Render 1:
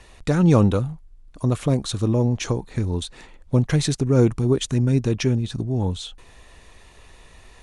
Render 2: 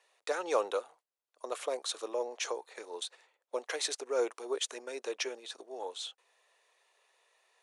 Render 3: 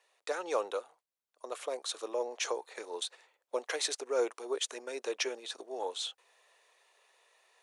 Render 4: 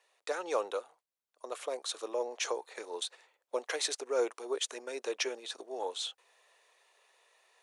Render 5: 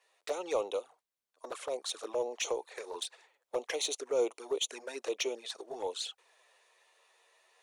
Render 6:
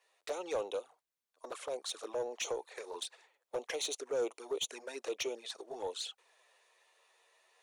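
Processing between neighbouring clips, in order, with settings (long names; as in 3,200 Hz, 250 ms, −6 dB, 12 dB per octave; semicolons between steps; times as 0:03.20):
noise gate −38 dBFS, range −12 dB; Butterworth high-pass 450 Hz 36 dB per octave; level −6 dB
speech leveller 2 s
no processing that can be heard
in parallel at −7 dB: hard clipping −32 dBFS, distortion −9 dB; on the sum: flanger swept by the level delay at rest 11.9 ms, full sweep at −29.5 dBFS
soft clipping −24.5 dBFS, distortion −19 dB; level −2 dB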